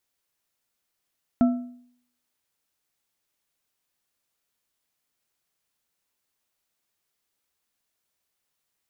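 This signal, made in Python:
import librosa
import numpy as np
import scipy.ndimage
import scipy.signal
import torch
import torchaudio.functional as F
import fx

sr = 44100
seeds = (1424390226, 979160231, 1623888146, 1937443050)

y = fx.strike_metal(sr, length_s=1.55, level_db=-13.0, body='bar', hz=246.0, decay_s=0.63, tilt_db=10.0, modes=3)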